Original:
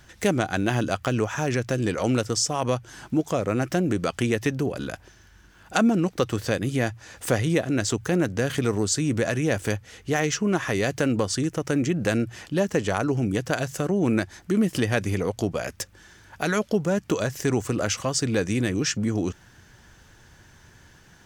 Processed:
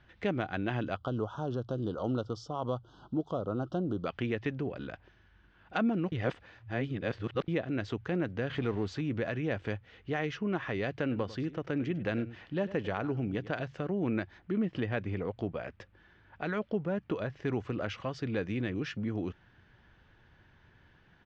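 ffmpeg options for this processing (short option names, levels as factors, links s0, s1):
-filter_complex "[0:a]asettb=1/sr,asplit=3[s0][s1][s2];[s0]atrim=end=0.964[s3];[s1]atrim=start=0.96:end=4.06,asetpts=PTS-STARTPTS,afade=t=in:d=0.004:c=qsin,afade=t=out:st=3.096:d=0.004:c=qsin,asuperstop=centerf=2100:order=8:qfactor=1.2[s4];[s2]atrim=start=4.056[s5];[s3][s4]acrossfade=d=0.004:c1=hsin:c2=qsin[s6];[s6][s5]acrossfade=d=0.004:c1=qsin:c2=hsin,asettb=1/sr,asplit=3[s7][s8][s9];[s7]atrim=end=8.514[s10];[s8]atrim=start=8.51:end=9.01,asetpts=PTS-STARTPTS,afade=t=in:d=0.004:c=qsin,afade=t=out:st=0.496:d=0.004:c=qsin,aeval=exprs='val(0)+0.5*0.02*sgn(val(0))':c=same[s11];[s9]atrim=start=9.006[s12];[s10][s11]acrossfade=d=0.004:c1=hsin:c2=qsin[s13];[s13][s12]acrossfade=d=0.004:c1=qsin:c2=hsin,asplit=3[s14][s15][s16];[s14]afade=t=out:st=11.1:d=0.02[s17];[s15]aecho=1:1:99:0.158,afade=t=in:st=11.1:d=0.02,afade=t=out:st=13.62:d=0.02[s18];[s16]afade=t=in:st=13.62:d=0.02[s19];[s17][s18][s19]amix=inputs=3:normalize=0,asettb=1/sr,asplit=3[s20][s21][s22];[s20]atrim=end=14.384[s23];[s21]atrim=start=14.38:end=17.46,asetpts=PTS-STARTPTS,afade=t=in:d=0.004:c=qsin,afade=t=out:st=3.076:d=0.004:c=qsin,highshelf=f=3500:g=-6.5[s24];[s22]atrim=start=17.456[s25];[s23][s24]acrossfade=d=0.004:c1=hsin:c2=qsin[s26];[s26][s25]acrossfade=d=0.004:c1=qsin:c2=hsin,asplit=3[s27][s28][s29];[s27]atrim=end=6.122[s30];[s28]atrim=start=6.118:end=7.482,asetpts=PTS-STARTPTS,areverse[s31];[s29]atrim=start=7.478[s32];[s30][s31]acrossfade=d=0.004:c1=hsin:c2=hsin[s33];[s33][s32]acrossfade=d=0.004:c1=hsin:c2=hsin,lowpass=f=3500:w=0.5412,lowpass=f=3500:w=1.3066,volume=0.355"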